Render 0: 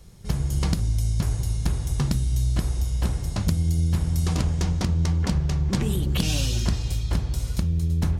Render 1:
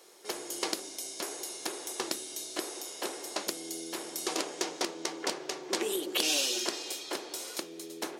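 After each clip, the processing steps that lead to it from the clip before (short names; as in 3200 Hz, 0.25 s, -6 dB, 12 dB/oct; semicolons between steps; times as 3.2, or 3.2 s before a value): dynamic EQ 1100 Hz, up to -4 dB, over -44 dBFS, Q 0.82; elliptic high-pass 340 Hz, stop band 80 dB; gain +3 dB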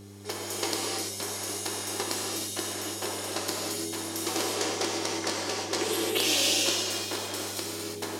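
non-linear reverb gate 0.37 s flat, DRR -3.5 dB; buzz 100 Hz, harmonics 4, -47 dBFS -3 dB/oct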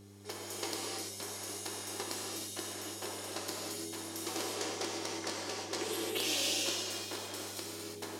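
overloaded stage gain 15.5 dB; gain -8 dB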